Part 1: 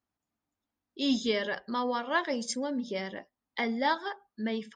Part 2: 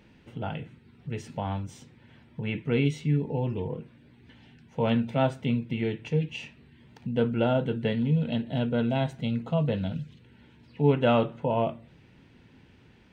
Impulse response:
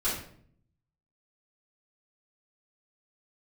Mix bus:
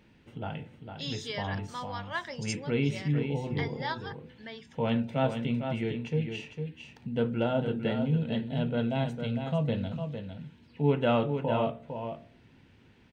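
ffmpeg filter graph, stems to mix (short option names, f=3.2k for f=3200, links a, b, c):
-filter_complex "[0:a]highpass=f=990:p=1,volume=-3.5dB[a];[1:a]bandreject=f=62.74:t=h:w=4,bandreject=f=125.48:t=h:w=4,bandreject=f=188.22:t=h:w=4,bandreject=f=250.96:t=h:w=4,bandreject=f=313.7:t=h:w=4,bandreject=f=376.44:t=h:w=4,bandreject=f=439.18:t=h:w=4,bandreject=f=501.92:t=h:w=4,bandreject=f=564.66:t=h:w=4,bandreject=f=627.4:t=h:w=4,bandreject=f=690.14:t=h:w=4,bandreject=f=752.88:t=h:w=4,bandreject=f=815.62:t=h:w=4,bandreject=f=878.36:t=h:w=4,volume=-3dB,asplit=2[b][c];[c]volume=-7dB,aecho=0:1:454:1[d];[a][b][d]amix=inputs=3:normalize=0"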